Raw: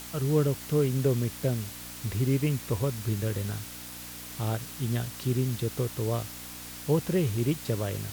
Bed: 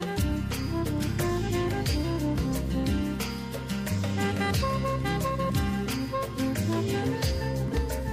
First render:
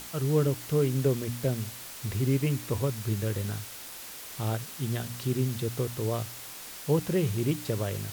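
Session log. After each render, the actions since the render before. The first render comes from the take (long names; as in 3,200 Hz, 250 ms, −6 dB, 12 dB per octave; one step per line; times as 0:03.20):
hum removal 60 Hz, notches 5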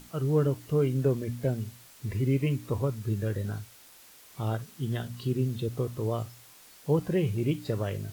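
noise reduction from a noise print 11 dB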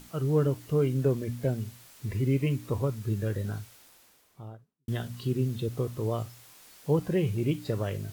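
0:03.60–0:04.88: fade out and dull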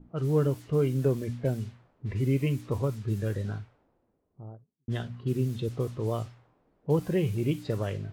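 low-pass that shuts in the quiet parts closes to 400 Hz, open at −25 dBFS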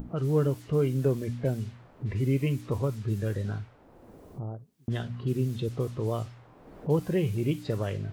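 upward compression, threshold −27 dBFS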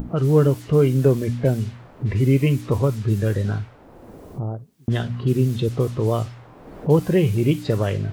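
level +9 dB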